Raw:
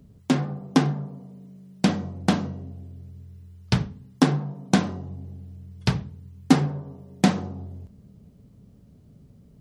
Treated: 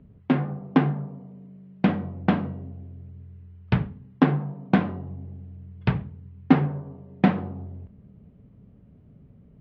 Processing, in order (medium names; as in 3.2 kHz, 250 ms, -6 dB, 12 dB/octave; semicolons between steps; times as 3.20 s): low-pass 2.7 kHz 24 dB/octave